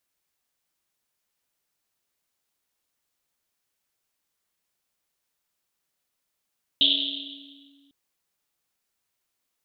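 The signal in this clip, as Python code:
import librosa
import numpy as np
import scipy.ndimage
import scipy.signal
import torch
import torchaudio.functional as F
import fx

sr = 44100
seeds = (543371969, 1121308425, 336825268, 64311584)

y = fx.risset_drum(sr, seeds[0], length_s=1.1, hz=280.0, decay_s=2.55, noise_hz=3400.0, noise_width_hz=910.0, noise_pct=80)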